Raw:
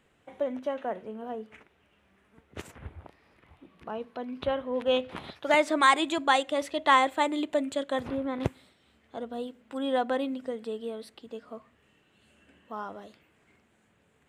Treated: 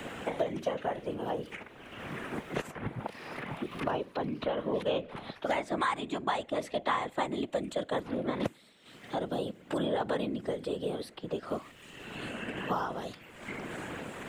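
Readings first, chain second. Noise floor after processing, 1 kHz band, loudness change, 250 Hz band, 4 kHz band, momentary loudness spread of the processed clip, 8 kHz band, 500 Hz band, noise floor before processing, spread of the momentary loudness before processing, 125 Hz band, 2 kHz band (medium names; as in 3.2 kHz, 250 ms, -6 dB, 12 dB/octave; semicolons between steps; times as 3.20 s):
-55 dBFS, -6.0 dB, -6.0 dB, -2.0 dB, -6.0 dB, 10 LU, -6.5 dB, -2.5 dB, -67 dBFS, 22 LU, +4.0 dB, -6.5 dB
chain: random-step tremolo; whisper effect; three bands compressed up and down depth 100%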